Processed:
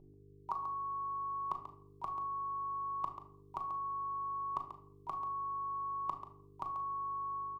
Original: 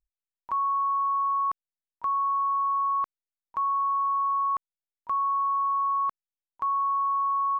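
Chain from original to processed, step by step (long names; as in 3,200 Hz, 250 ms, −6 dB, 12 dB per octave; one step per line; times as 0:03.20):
notch filter 1,100 Hz, Q 10
noise gate −38 dBFS, range −7 dB
automatic gain control gain up to 8 dB
hum with harmonics 50 Hz, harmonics 10, −58 dBFS −3 dB per octave
phaser with its sweep stopped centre 330 Hz, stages 8
double-tracking delay 37 ms −12 dB
single-tap delay 138 ms −10 dB
rectangular room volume 850 cubic metres, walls furnished, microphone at 1.2 metres
level +1.5 dB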